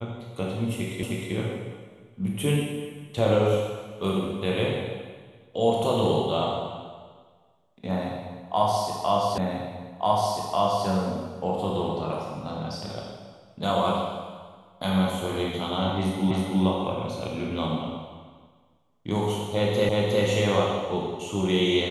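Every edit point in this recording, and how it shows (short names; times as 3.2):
1.03 repeat of the last 0.31 s
9.38 repeat of the last 1.49 s
16.31 repeat of the last 0.32 s
19.89 repeat of the last 0.36 s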